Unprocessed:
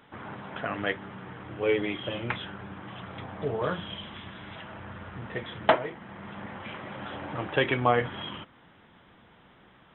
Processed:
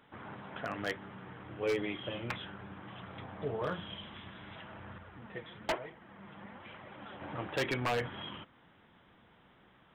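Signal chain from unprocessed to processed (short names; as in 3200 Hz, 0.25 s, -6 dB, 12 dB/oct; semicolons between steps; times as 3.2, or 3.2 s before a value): 4.98–7.21 flange 1.1 Hz, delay 0.9 ms, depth 5.8 ms, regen +42%; wavefolder -18.5 dBFS; gain -6 dB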